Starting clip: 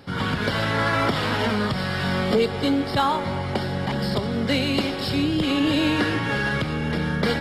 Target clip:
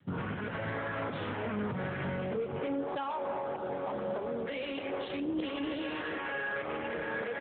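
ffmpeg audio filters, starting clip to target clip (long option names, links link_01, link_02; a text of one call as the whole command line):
ffmpeg -i in.wav -filter_complex "[0:a]afwtdn=0.0282,asetnsamples=nb_out_samples=441:pad=0,asendcmd='2.59 highpass f 410',highpass=74,adynamicequalizer=threshold=0.00794:dfrequency=500:dqfactor=2.5:tfrequency=500:tqfactor=2.5:attack=5:release=100:ratio=0.375:range=2:mode=boostabove:tftype=bell,acompressor=threshold=-26dB:ratio=4,alimiter=limit=-23dB:level=0:latency=1:release=90,asoftclip=type=tanh:threshold=-29.5dB,acrusher=bits=5:mode=log:mix=0:aa=0.000001,asplit=2[link_01][link_02];[link_02]adelay=29,volume=-11dB[link_03];[link_01][link_03]amix=inputs=2:normalize=0,asplit=2[link_04][link_05];[link_05]adelay=260,lowpass=frequency=1200:poles=1,volume=-19.5dB,asplit=2[link_06][link_07];[link_07]adelay=260,lowpass=frequency=1200:poles=1,volume=0.41,asplit=2[link_08][link_09];[link_09]adelay=260,lowpass=frequency=1200:poles=1,volume=0.41[link_10];[link_04][link_06][link_08][link_10]amix=inputs=4:normalize=0" -ar 8000 -c:a libopencore_amrnb -b:a 7950 out.amr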